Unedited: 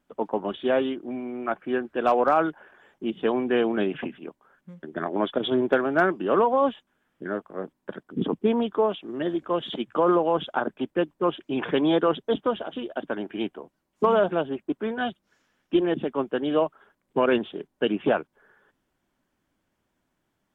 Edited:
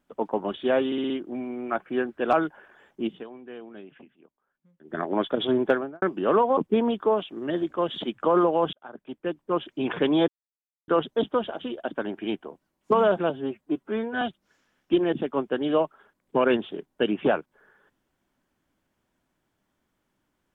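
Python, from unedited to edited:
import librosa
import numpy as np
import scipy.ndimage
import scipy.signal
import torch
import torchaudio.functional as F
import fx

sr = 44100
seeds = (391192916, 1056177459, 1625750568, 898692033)

y = fx.studio_fade_out(x, sr, start_s=5.7, length_s=0.35)
y = fx.edit(y, sr, fx.stutter(start_s=0.86, slice_s=0.06, count=5),
    fx.cut(start_s=2.09, length_s=0.27),
    fx.fade_down_up(start_s=3.11, length_s=1.89, db=-18.5, fade_s=0.16),
    fx.cut(start_s=6.6, length_s=1.69),
    fx.fade_in_span(start_s=10.45, length_s=1.01),
    fx.insert_silence(at_s=12.0, length_s=0.6),
    fx.stretch_span(start_s=14.42, length_s=0.61, factor=1.5), tone=tone)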